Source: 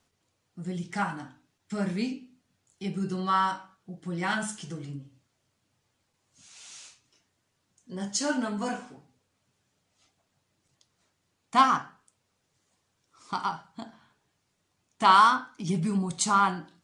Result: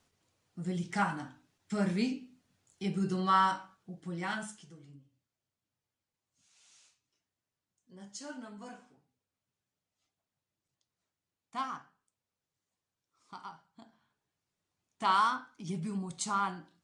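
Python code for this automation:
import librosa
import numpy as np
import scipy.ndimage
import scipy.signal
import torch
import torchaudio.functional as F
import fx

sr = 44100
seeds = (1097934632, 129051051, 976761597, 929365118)

y = fx.gain(x, sr, db=fx.line((3.59, -1.0), (4.4, -8.0), (4.71, -16.0), (13.52, -16.0), (15.13, -9.0)))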